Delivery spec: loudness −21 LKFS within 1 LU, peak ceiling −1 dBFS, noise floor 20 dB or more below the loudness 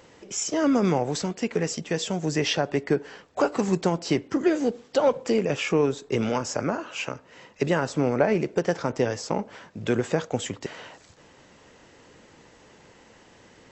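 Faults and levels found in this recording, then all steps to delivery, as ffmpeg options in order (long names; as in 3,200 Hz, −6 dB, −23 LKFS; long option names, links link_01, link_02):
integrated loudness −26.0 LKFS; sample peak −8.0 dBFS; target loudness −21.0 LKFS
→ -af "volume=5dB"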